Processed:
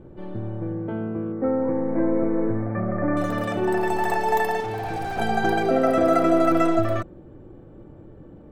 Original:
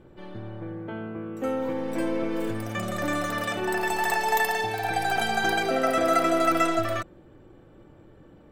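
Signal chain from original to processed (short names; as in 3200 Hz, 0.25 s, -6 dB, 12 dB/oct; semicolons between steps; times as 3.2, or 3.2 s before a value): 1.32–3.17 elliptic low-pass 2100 Hz, stop band 40 dB; 4.6–5.19 hard clip -29.5 dBFS, distortion -16 dB; tilt shelf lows +8 dB, about 1200 Hz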